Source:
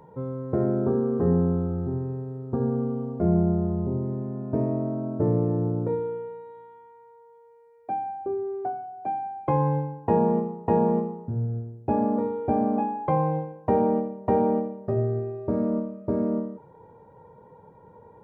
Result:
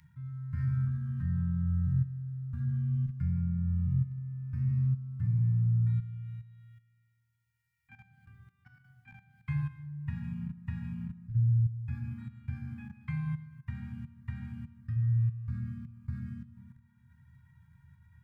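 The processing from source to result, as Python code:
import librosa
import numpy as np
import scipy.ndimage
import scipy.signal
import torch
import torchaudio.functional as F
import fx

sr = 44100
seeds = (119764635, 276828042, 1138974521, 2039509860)

y = fx.rev_fdn(x, sr, rt60_s=1.4, lf_ratio=1.3, hf_ratio=0.6, size_ms=74.0, drr_db=3.0)
y = fx.level_steps(y, sr, step_db=13)
y = scipy.signal.sosfilt(scipy.signal.ellip(3, 1.0, 70, [140.0, 1800.0], 'bandstop', fs=sr, output='sos'), y)
y = fx.low_shelf(y, sr, hz=71.0, db=-5.5)
y = y * librosa.db_to_amplitude(3.5)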